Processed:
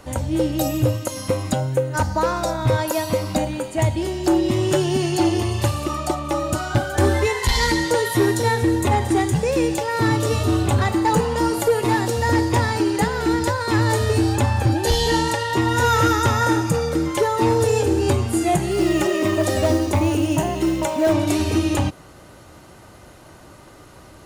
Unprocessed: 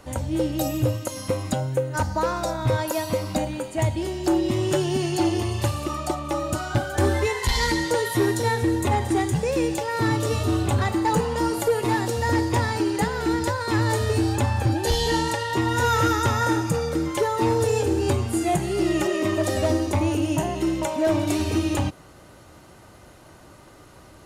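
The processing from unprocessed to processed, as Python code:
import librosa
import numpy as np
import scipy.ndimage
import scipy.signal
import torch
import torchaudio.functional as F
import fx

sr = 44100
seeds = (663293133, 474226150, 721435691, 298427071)

y = fx.mod_noise(x, sr, seeds[0], snr_db=29, at=(18.7, 21.13))
y = y * librosa.db_to_amplitude(3.5)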